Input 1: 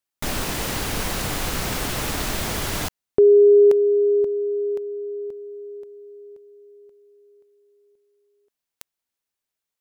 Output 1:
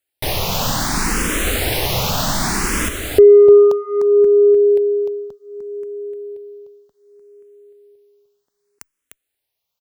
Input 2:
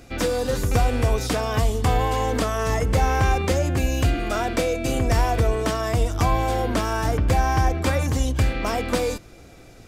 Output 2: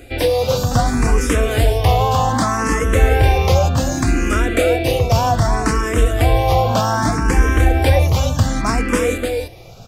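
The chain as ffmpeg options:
-filter_complex "[0:a]acontrast=67,aecho=1:1:301:0.562,asplit=2[a][b];[b]afreqshift=0.65[c];[a][c]amix=inputs=2:normalize=1,volume=2dB"

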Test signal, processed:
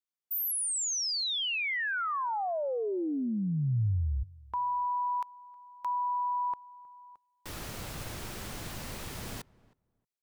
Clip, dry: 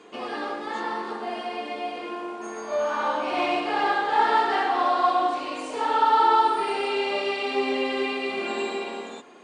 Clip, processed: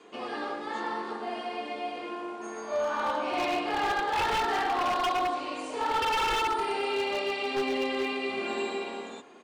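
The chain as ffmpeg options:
-filter_complex "[0:a]adynamicequalizer=threshold=0.00355:dfrequency=110:dqfactor=1.5:tfrequency=110:tqfactor=1.5:attack=5:release=100:ratio=0.375:range=2.5:mode=boostabove:tftype=bell,aeval=exprs='0.119*(abs(mod(val(0)/0.119+3,4)-2)-1)':c=same,asplit=2[a][b];[b]adelay=315,lowpass=f=1.2k:p=1,volume=-22dB,asplit=2[c][d];[d]adelay=315,lowpass=f=1.2k:p=1,volume=0.17[e];[a][c][e]amix=inputs=3:normalize=0,volume=-3.5dB"

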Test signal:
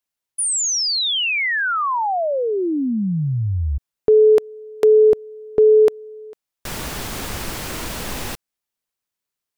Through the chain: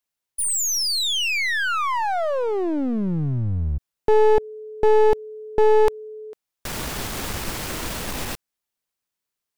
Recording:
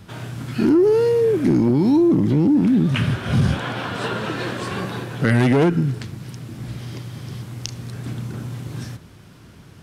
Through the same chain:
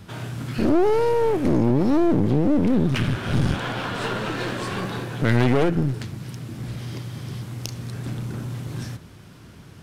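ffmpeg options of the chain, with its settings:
-af "aeval=exprs='clip(val(0),-1,0.0473)':c=same"

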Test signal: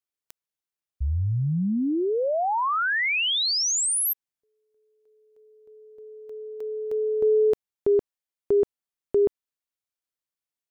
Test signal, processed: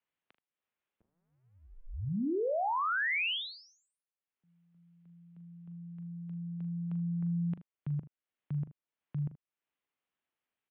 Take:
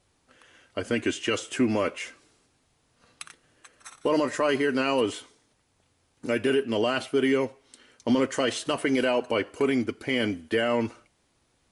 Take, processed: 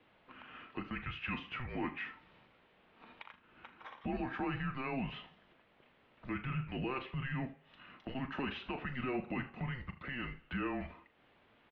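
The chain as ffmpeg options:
-af "alimiter=limit=-18.5dB:level=0:latency=1:release=10,acompressor=threshold=-48dB:ratio=2:attack=0.22:release=244:knee=1:detection=rms,highpass=f=400:t=q:w=0.5412,highpass=f=400:t=q:w=1.307,lowpass=f=3.4k:t=q:w=0.5176,lowpass=f=3.4k:t=q:w=0.7071,lowpass=f=3.4k:t=q:w=1.932,afreqshift=-260,aecho=1:1:40|78:0.266|0.141,volume=6dB"

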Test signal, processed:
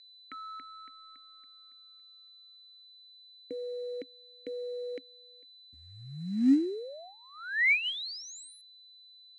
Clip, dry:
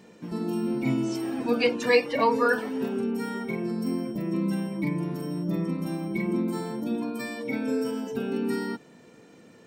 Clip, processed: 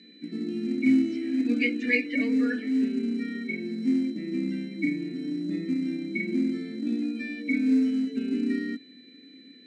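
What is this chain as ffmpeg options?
-filter_complex "[0:a]asplit=3[a][b][c];[a]bandpass=f=270:t=q:w=8,volume=0dB[d];[b]bandpass=f=2.29k:t=q:w=8,volume=-6dB[e];[c]bandpass=f=3.01k:t=q:w=8,volume=-9dB[f];[d][e][f]amix=inputs=3:normalize=0,aeval=exprs='val(0)+0.001*sin(2*PI*4000*n/s)':c=same,asplit=2[g][h];[h]acrusher=bits=5:mode=log:mix=0:aa=0.000001,volume=-6dB[i];[g][i]amix=inputs=2:normalize=0,highpass=160,equalizer=f=740:t=q:w=4:g=3,equalizer=f=1.1k:t=q:w=4:g=-8,equalizer=f=1.9k:t=q:w=4:g=8,equalizer=f=3.3k:t=q:w=4:g=-8,equalizer=f=5.7k:t=q:w=4:g=-3,lowpass=f=8.4k:w=0.5412,lowpass=f=8.4k:w=1.3066,volume=6dB"

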